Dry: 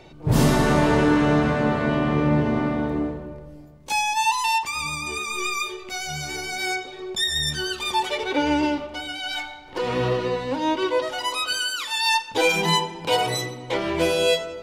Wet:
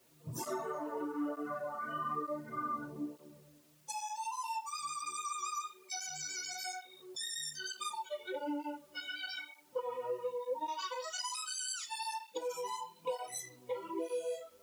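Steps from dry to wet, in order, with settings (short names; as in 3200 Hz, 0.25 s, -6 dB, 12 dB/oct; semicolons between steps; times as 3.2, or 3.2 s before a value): 10.68–11.86 weighting filter ITU-R 468; spectral noise reduction 25 dB; HPF 110 Hz 12 dB/oct; band shelf 2600 Hz -12.5 dB; limiter -20.5 dBFS, peak gain reduction 8.5 dB; compressor 12:1, threshold -40 dBFS, peak gain reduction 16.5 dB; notch comb 790 Hz; requantised 12-bit, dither triangular; on a send at -7.5 dB: reverb RT60 0.30 s, pre-delay 3 ms; on the sum: tape flanging out of phase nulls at 1.1 Hz, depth 6.6 ms; gain +6 dB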